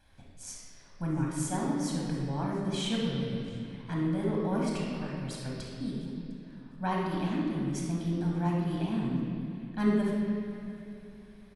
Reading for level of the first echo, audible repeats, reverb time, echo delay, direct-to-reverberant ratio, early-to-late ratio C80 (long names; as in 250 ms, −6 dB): −23.0 dB, 1, 2.9 s, 704 ms, −3.5 dB, 1.0 dB